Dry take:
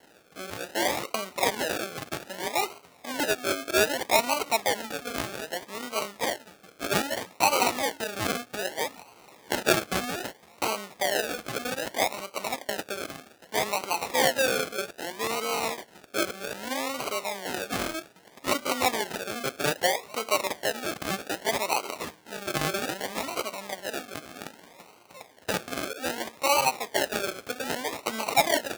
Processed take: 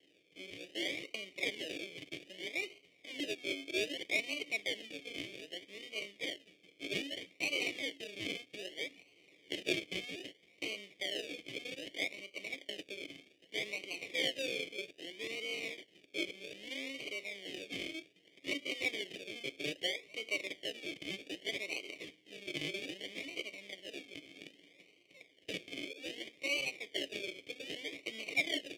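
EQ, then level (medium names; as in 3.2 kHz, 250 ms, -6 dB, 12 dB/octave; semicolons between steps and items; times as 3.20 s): vowel filter i; static phaser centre 600 Hz, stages 4; band-stop 4 kHz, Q 9.8; +9.5 dB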